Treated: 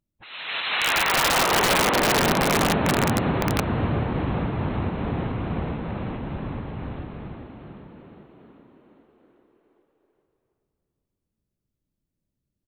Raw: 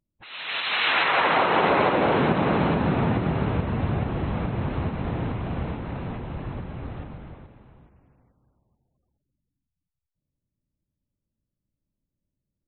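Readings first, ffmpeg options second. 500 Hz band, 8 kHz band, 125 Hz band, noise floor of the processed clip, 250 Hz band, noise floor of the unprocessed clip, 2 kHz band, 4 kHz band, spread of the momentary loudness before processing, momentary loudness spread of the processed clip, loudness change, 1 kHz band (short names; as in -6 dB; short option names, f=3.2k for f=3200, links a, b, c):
0.0 dB, n/a, 0.0 dB, -83 dBFS, +0.5 dB, -85 dBFS, +1.5 dB, +4.5 dB, 15 LU, 17 LU, +1.0 dB, 0.0 dB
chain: -filter_complex "[0:a]asplit=9[a][b][c][d][e][f][g][h][i];[b]adelay=398,afreqshift=39,volume=-8dB[j];[c]adelay=796,afreqshift=78,volume=-12.3dB[k];[d]adelay=1194,afreqshift=117,volume=-16.6dB[l];[e]adelay=1592,afreqshift=156,volume=-20.9dB[m];[f]adelay=1990,afreqshift=195,volume=-25.2dB[n];[g]adelay=2388,afreqshift=234,volume=-29.5dB[o];[h]adelay=2786,afreqshift=273,volume=-33.8dB[p];[i]adelay=3184,afreqshift=312,volume=-38.1dB[q];[a][j][k][l][m][n][o][p][q]amix=inputs=9:normalize=0,aeval=exprs='(mod(4.47*val(0)+1,2)-1)/4.47':c=same"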